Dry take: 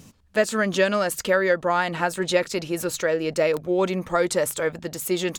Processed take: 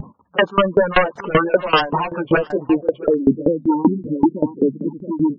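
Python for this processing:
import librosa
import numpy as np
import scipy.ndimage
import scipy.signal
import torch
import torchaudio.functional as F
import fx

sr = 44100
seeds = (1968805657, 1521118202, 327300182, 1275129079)

y = fx.pitch_ramps(x, sr, semitones=-2.5, every_ms=386)
y = scipy.signal.sosfilt(scipy.signal.butter(2, 150.0, 'highpass', fs=sr, output='sos'), y)
y = fx.high_shelf(y, sr, hz=3700.0, db=11.5)
y = fx.wow_flutter(y, sr, seeds[0], rate_hz=2.1, depth_cents=140.0)
y = fx.filter_sweep_lowpass(y, sr, from_hz=1000.0, to_hz=270.0, start_s=2.64, end_s=3.25, q=2.8)
y = fx.fold_sine(y, sr, drive_db=13, ceiling_db=-5.0)
y = fx.spec_gate(y, sr, threshold_db=-15, keep='strong')
y = y + 10.0 ** (-16.5 / 20.0) * np.pad(y, (int(673 * sr / 1000.0), 0))[:len(y)]
y = fx.tremolo_decay(y, sr, direction='decaying', hz=5.2, depth_db=21)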